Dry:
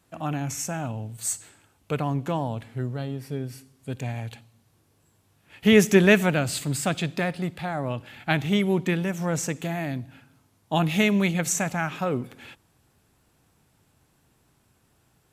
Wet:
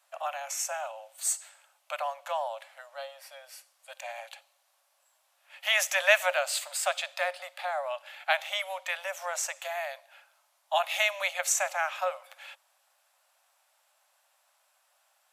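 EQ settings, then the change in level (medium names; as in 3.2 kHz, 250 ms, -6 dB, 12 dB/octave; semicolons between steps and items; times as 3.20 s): Chebyshev high-pass 540 Hz, order 10; 0.0 dB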